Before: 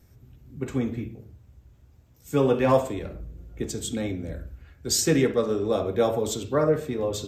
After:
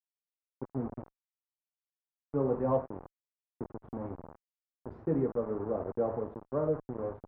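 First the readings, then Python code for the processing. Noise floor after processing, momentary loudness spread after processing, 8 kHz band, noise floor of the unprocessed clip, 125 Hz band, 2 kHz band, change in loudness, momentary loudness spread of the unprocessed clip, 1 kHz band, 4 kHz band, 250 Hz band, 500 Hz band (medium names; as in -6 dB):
under -85 dBFS, 17 LU, under -40 dB, -56 dBFS, -9.0 dB, under -20 dB, -9.0 dB, 17 LU, -9.5 dB, under -40 dB, -9.0 dB, -9.0 dB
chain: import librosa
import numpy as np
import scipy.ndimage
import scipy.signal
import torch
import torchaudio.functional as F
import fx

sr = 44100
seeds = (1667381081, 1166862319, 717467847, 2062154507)

y = np.where(np.abs(x) >= 10.0 ** (-27.0 / 20.0), x, 0.0)
y = scipy.signal.sosfilt(scipy.signal.butter(4, 1100.0, 'lowpass', fs=sr, output='sos'), y)
y = fx.cheby_harmonics(y, sr, harmonics=(5,), levels_db=(-40,), full_scale_db=-8.5)
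y = F.gain(torch.from_numpy(y), -8.5).numpy()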